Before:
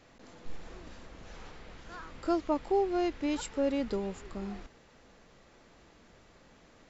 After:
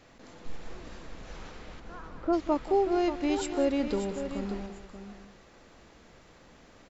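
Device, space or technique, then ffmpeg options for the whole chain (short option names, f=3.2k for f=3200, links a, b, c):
ducked delay: -filter_complex "[0:a]asplit=3[a][b][c];[a]afade=t=out:st=1.79:d=0.02[d];[b]lowpass=1.2k,afade=t=in:st=1.79:d=0.02,afade=t=out:st=2.32:d=0.02[e];[c]afade=t=in:st=2.32:d=0.02[f];[d][e][f]amix=inputs=3:normalize=0,asplit=3[g][h][i];[h]adelay=185,volume=-8dB[j];[i]apad=whole_len=312157[k];[j][k]sidechaincompress=threshold=-32dB:ratio=8:attack=16:release=931[l];[g][l]amix=inputs=2:normalize=0,aecho=1:1:585:0.335,volume=2.5dB"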